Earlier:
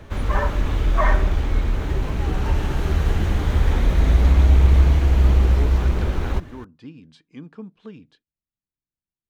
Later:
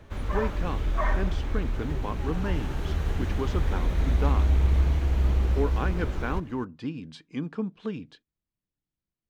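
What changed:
speech +6.5 dB; background -8.0 dB

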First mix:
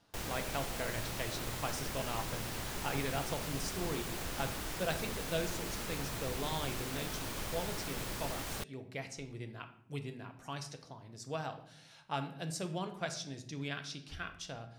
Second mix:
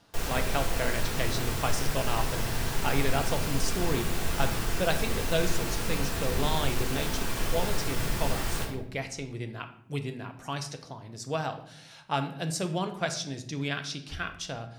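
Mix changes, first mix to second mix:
speech +8.0 dB; background: send on

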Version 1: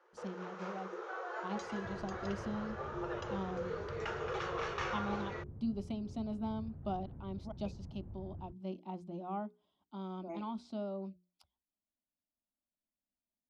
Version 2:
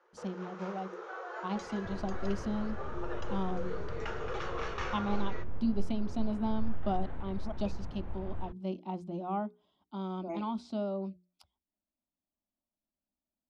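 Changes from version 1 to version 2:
speech +5.5 dB; second sound: remove band-pass filter 130 Hz, Q 1.2

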